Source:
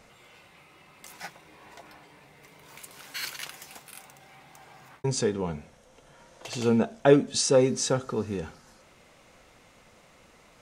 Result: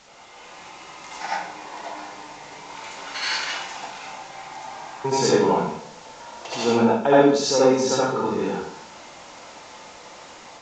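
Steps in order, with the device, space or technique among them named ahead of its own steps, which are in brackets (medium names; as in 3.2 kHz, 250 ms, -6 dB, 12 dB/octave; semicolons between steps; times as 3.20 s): filmed off a television (band-pass 200–7800 Hz; peaking EQ 910 Hz +9 dB 0.47 oct; reverberation RT60 0.65 s, pre-delay 65 ms, DRR -7.5 dB; white noise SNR 24 dB; level rider gain up to 6 dB; trim -2.5 dB; AAC 48 kbps 16 kHz)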